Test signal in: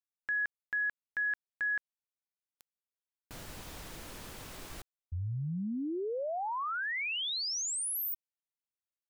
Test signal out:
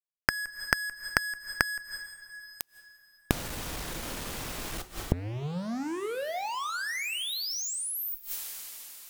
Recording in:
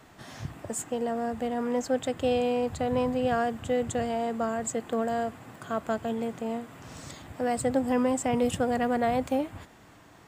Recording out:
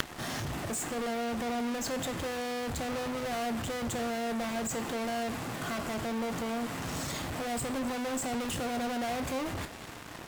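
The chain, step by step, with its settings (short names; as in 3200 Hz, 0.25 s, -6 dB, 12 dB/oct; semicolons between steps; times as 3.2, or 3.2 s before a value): fuzz box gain 51 dB, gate -53 dBFS; two-slope reverb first 0.55 s, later 4 s, from -27 dB, DRR 9 dB; flipped gate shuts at -17 dBFS, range -27 dB; gain +7 dB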